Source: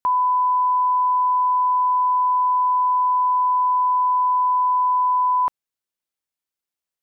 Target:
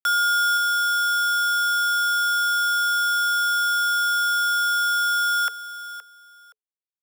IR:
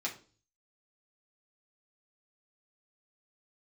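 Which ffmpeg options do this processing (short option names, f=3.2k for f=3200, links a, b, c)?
-af "highpass=f=790:w=0.5412,highpass=f=790:w=1.3066,alimiter=limit=-19.5dB:level=0:latency=1,acrusher=bits=3:mix=0:aa=0.000001,afreqshift=420,acontrast=66,aecho=1:1:520|1040:0.2|0.0339,volume=-6.5dB"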